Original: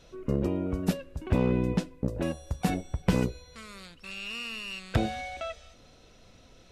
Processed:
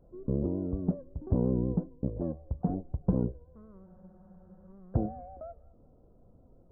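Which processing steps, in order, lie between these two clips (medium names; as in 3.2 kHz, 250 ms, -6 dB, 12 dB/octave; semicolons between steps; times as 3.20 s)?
vibrato 5.5 Hz 69 cents; Gaussian low-pass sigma 11 samples; spectral freeze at 3.88 s, 0.80 s; trim -1.5 dB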